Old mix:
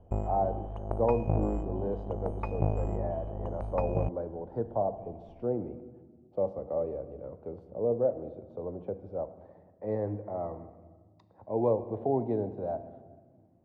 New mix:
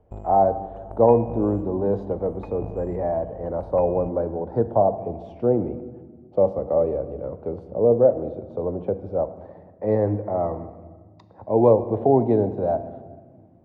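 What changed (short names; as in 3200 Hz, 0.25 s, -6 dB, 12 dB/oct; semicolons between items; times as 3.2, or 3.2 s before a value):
speech +11.0 dB; background -6.0 dB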